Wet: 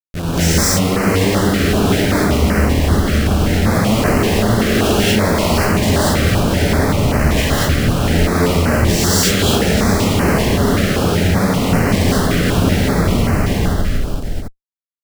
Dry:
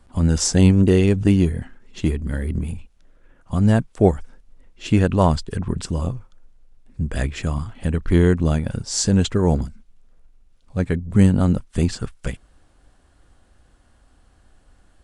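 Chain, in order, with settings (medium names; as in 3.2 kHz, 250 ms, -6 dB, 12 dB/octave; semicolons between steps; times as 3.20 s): spectral sustain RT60 0.68 s; echo that smears into a reverb 645 ms, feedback 45%, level -11 dB; in parallel at +2.5 dB: compression, threshold -24 dBFS, peak gain reduction 15.5 dB; on the sum: peak limiter -7 dBFS, peak gain reduction 8 dB; Schmitt trigger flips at -28 dBFS; dynamic bell 2 kHz, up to +6 dB, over -39 dBFS, Q 0.9; gated-style reverb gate 260 ms rising, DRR -8 dB; step-sequenced notch 5.2 Hz 930–3500 Hz; trim -4 dB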